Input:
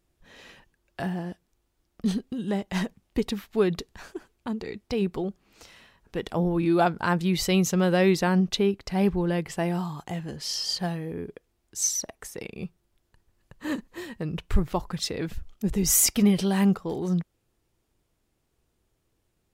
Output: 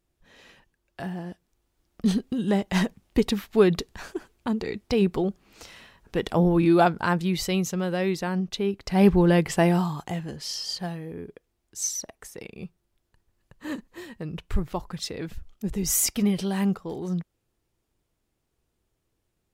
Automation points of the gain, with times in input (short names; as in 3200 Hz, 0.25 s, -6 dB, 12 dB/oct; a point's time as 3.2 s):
1.02 s -3.5 dB
2.3 s +4.5 dB
6.59 s +4.5 dB
7.83 s -5 dB
8.56 s -5 dB
9.11 s +7 dB
9.65 s +7 dB
10.62 s -3 dB